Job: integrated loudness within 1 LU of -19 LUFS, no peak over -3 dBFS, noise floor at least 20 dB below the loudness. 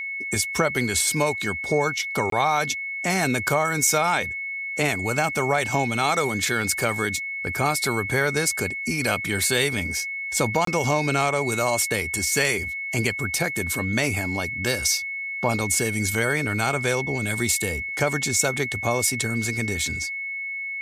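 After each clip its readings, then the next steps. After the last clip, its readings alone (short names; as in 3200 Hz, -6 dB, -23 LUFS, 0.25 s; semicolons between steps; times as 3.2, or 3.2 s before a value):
dropouts 2; longest dropout 23 ms; steady tone 2200 Hz; tone level -28 dBFS; loudness -23.0 LUFS; peak -6.5 dBFS; loudness target -19.0 LUFS
-> interpolate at 2.3/10.65, 23 ms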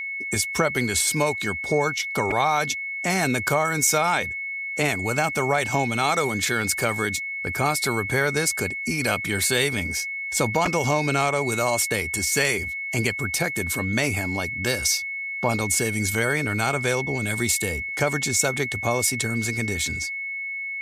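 dropouts 0; steady tone 2200 Hz; tone level -28 dBFS
-> notch 2200 Hz, Q 30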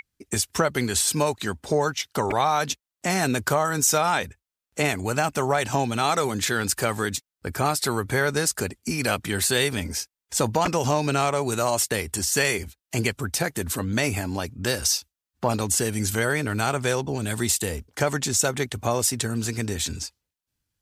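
steady tone none; loudness -24.5 LUFS; peak -6.5 dBFS; loudness target -19.0 LUFS
-> gain +5.5 dB; limiter -3 dBFS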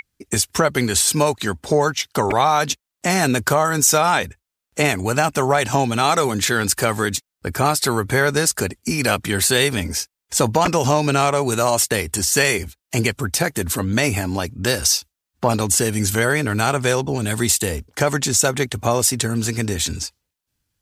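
loudness -19.0 LUFS; peak -3.0 dBFS; noise floor -84 dBFS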